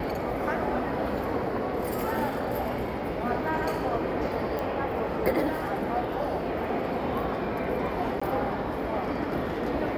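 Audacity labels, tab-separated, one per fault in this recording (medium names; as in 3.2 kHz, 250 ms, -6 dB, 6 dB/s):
4.590000	4.590000	pop -19 dBFS
8.200000	8.210000	dropout 15 ms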